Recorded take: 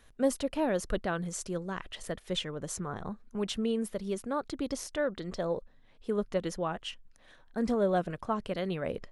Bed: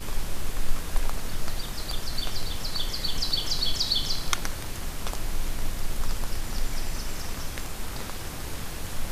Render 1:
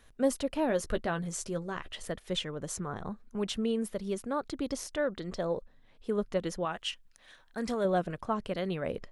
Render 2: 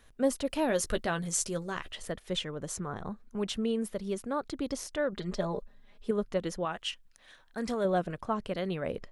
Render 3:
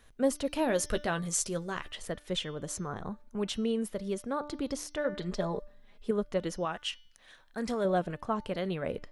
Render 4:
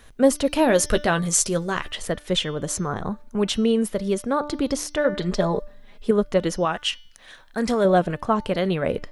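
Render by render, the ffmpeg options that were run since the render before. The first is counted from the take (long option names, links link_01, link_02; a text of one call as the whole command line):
ffmpeg -i in.wav -filter_complex "[0:a]asettb=1/sr,asplit=3[link_01][link_02][link_03];[link_01]atrim=end=0.684[link_04];[link_02]atrim=start=0.68:end=2.06,asetpts=PTS-STARTPTS,afade=type=in:duration=0.004:curve=qsin,afade=type=out:start_time=1.376:duration=0.004:curve=qsin,asplit=2[link_05][link_06];[link_06]adelay=13,volume=-8.5dB[link_07];[link_05][link_07]amix=inputs=2:normalize=0,atrim=end_sample=60858[link_08];[link_03]atrim=start=2.056[link_09];[link_04][link_08]acrossfade=duration=0.004:curve1=hsin:curve2=qsin[link_10];[link_10][link_09]acrossfade=duration=0.004:curve1=qsin:curve2=hsin,asettb=1/sr,asplit=3[link_11][link_12][link_13];[link_11]atrim=end=6.654[link_14];[link_12]atrim=start=6.65:end=7.85,asetpts=PTS-STARTPTS,afade=type=in:duration=0.004:curve=qsin,afade=type=out:start_time=1.196:duration=0.004:curve=qsin,tiltshelf=frequency=970:gain=-5.5[link_15];[link_13]atrim=start=7.846[link_16];[link_14][link_15]acrossfade=duration=0.004:curve1=hsin:curve2=qsin[link_17];[link_17][link_16]acrossfade=duration=0.004:curve1=qsin:curve2=hsin" out.wav
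ffmpeg -i in.wav -filter_complex "[0:a]asettb=1/sr,asplit=3[link_01][link_02][link_03];[link_01]atrim=end=0.454[link_04];[link_02]atrim=start=0.45:end=1.91,asetpts=PTS-STARTPTS,afade=type=in:duration=0.004:curve=qsin,afade=type=out:start_time=1.456:duration=0.004:curve=qsin,highshelf=frequency=2800:gain=9[link_05];[link_03]atrim=start=1.906[link_06];[link_04][link_05]acrossfade=duration=0.004:curve1=hsin:curve2=qsin[link_07];[link_07][link_06]acrossfade=duration=0.004:curve1=qsin:curve2=hsin,asettb=1/sr,asplit=3[link_08][link_09][link_10];[link_08]atrim=end=5.124[link_11];[link_09]atrim=start=5.12:end=6.11,asetpts=PTS-STARTPTS,afade=type=in:duration=0.004:curve=qsin,afade=type=out:start_time=0.986:duration=0.004:curve=qsin,aecho=1:1:4.9:0.79,atrim=end_sample=43659[link_12];[link_10]atrim=start=6.106[link_13];[link_11][link_12]acrossfade=duration=0.004:curve1=hsin:curve2=qsin[link_14];[link_14][link_13]acrossfade=duration=0.004:curve1=qsin:curve2=hsin" out.wav
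ffmpeg -i in.wav -af "bandreject=frequency=295.2:width_type=h:width=4,bandreject=frequency=590.4:width_type=h:width=4,bandreject=frequency=885.6:width_type=h:width=4,bandreject=frequency=1180.8:width_type=h:width=4,bandreject=frequency=1476:width_type=h:width=4,bandreject=frequency=1771.2:width_type=h:width=4,bandreject=frequency=2066.4:width_type=h:width=4,bandreject=frequency=2361.6:width_type=h:width=4,bandreject=frequency=2656.8:width_type=h:width=4,bandreject=frequency=2952:width_type=h:width=4,bandreject=frequency=3247.2:width_type=h:width=4,bandreject=frequency=3542.4:width_type=h:width=4,bandreject=frequency=3837.6:width_type=h:width=4,bandreject=frequency=4132.8:width_type=h:width=4,bandreject=frequency=4428:width_type=h:width=4,bandreject=frequency=4723.2:width_type=h:width=4,bandreject=frequency=5018.4:width_type=h:width=4,bandreject=frequency=5313.6:width_type=h:width=4,bandreject=frequency=5608.8:width_type=h:width=4,bandreject=frequency=5904:width_type=h:width=4,bandreject=frequency=6199.2:width_type=h:width=4" out.wav
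ffmpeg -i in.wav -af "volume=10.5dB" out.wav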